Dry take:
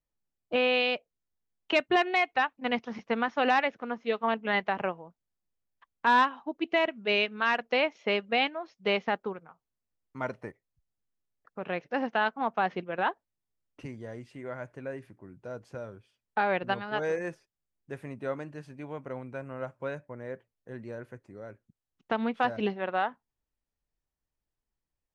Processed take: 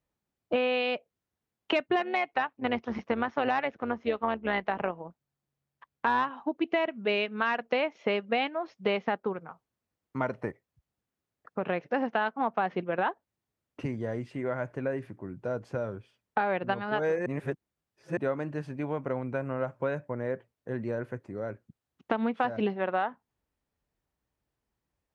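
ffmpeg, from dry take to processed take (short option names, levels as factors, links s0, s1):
-filter_complex "[0:a]asettb=1/sr,asplit=3[s0][s1][s2];[s0]atrim=end=1.994[s3];[s1]atrim=start=1.99:end=6.3,asetpts=PTS-STARTPTS,afade=t=in:d=0.004:c=qsin,afade=t=out:st=4.306:d=0.004:c=qsin,tremolo=f=140:d=0.462[s4];[s2]atrim=start=6.296[s5];[s3][s4]acrossfade=d=0.004:c1=hsin:c2=qsin[s6];[s6][s5]acrossfade=d=0.004:c1=qsin:c2=hsin,asplit=3[s7][s8][s9];[s7]atrim=end=17.262[s10];[s8]atrim=start=17.258:end=18.172,asetpts=PTS-STARTPTS,areverse[s11];[s9]atrim=start=18.168[s12];[s10][s11]acrossfade=d=0.004:c1=hsin:c2=hsin[s13];[s13][s12]acrossfade=d=0.004:c1=hsin:c2=hsin,highpass=63,highshelf=f=3000:g=-9.5,acompressor=threshold=0.0158:ratio=3,volume=2.82"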